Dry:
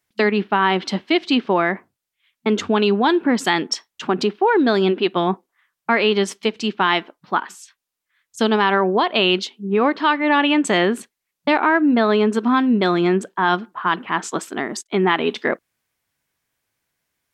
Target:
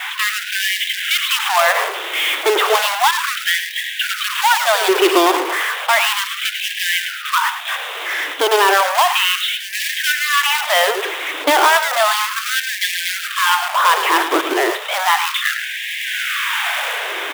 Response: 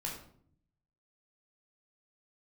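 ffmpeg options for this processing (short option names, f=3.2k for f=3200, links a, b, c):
-filter_complex "[0:a]aeval=exprs='val(0)+0.5*0.112*sgn(val(0))':c=same,adynamicequalizer=threshold=0.02:dfrequency=1100:dqfactor=5.3:tfrequency=1100:tqfactor=5.3:attack=5:release=100:ratio=0.375:range=1.5:mode=boostabove:tftype=bell,dynaudnorm=f=160:g=9:m=6dB,aresample=8000,asoftclip=type=tanh:threshold=-13.5dB,aresample=44100,acrusher=bits=2:mode=log:mix=0:aa=0.000001,asplit=2[a][b];[b]aecho=0:1:108:0.316[c];[a][c]amix=inputs=2:normalize=0,afftfilt=real='re*gte(b*sr/1024,290*pow(1600/290,0.5+0.5*sin(2*PI*0.33*pts/sr)))':imag='im*gte(b*sr/1024,290*pow(1600/290,0.5+0.5*sin(2*PI*0.33*pts/sr)))':win_size=1024:overlap=0.75,volume=5dB"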